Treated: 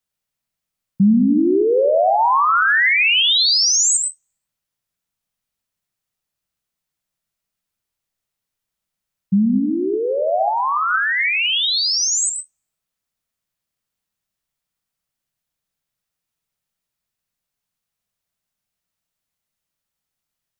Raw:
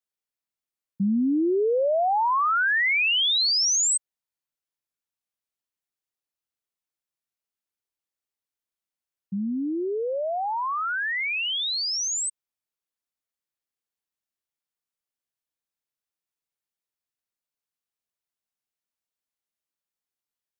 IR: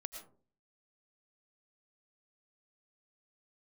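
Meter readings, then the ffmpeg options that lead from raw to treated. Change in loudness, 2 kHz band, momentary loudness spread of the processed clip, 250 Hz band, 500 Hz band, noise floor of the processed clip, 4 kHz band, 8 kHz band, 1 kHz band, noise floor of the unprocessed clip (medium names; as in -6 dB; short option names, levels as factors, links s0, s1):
+7.5 dB, +7.5 dB, 8 LU, +9.5 dB, +7.5 dB, -83 dBFS, +7.5 dB, +7.0 dB, +7.5 dB, under -85 dBFS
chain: -filter_complex "[0:a]lowshelf=f=230:t=q:w=1.5:g=6.5[s0];[1:a]atrim=start_sample=2205[s1];[s0][s1]afir=irnorm=-1:irlink=0,alimiter=level_in=8.91:limit=0.891:release=50:level=0:latency=1,volume=0.422"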